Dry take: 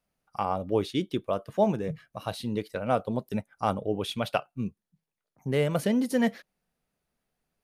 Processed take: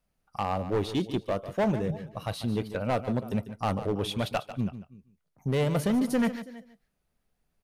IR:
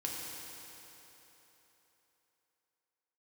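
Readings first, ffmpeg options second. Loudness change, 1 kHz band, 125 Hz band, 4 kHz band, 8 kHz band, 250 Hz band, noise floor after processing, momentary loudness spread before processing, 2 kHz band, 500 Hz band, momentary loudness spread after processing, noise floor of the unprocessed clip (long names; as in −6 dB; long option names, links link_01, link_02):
−0.5 dB, −1.5 dB, +3.0 dB, 0.0 dB, +0.5 dB, +0.5 dB, −78 dBFS, 10 LU, −0.5 dB, −1.5 dB, 10 LU, below −85 dBFS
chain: -filter_complex "[0:a]lowshelf=frequency=91:gain=11,asplit=2[link_01][link_02];[link_02]aecho=0:1:327:0.0794[link_03];[link_01][link_03]amix=inputs=2:normalize=0,volume=21.5dB,asoftclip=hard,volume=-21.5dB,asplit=2[link_04][link_05];[link_05]aecho=0:1:146:0.237[link_06];[link_04][link_06]amix=inputs=2:normalize=0"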